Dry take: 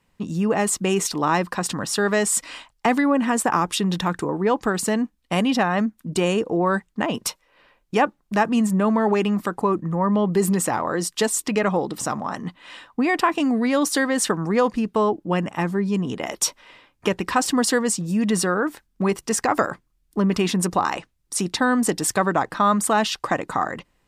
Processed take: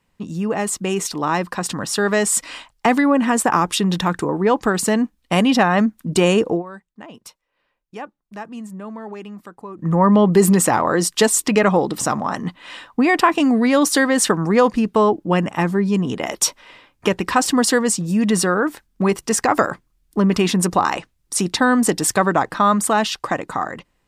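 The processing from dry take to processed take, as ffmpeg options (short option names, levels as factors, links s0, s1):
-filter_complex "[0:a]asplit=3[s0][s1][s2];[s0]atrim=end=6.63,asetpts=PTS-STARTPTS,afade=t=out:st=6.51:d=0.12:silence=0.0891251[s3];[s1]atrim=start=6.63:end=9.77,asetpts=PTS-STARTPTS,volume=0.0891[s4];[s2]atrim=start=9.77,asetpts=PTS-STARTPTS,afade=t=in:d=0.12:silence=0.0891251[s5];[s3][s4][s5]concat=n=3:v=0:a=1,dynaudnorm=f=400:g=9:m=3.76,volume=0.891"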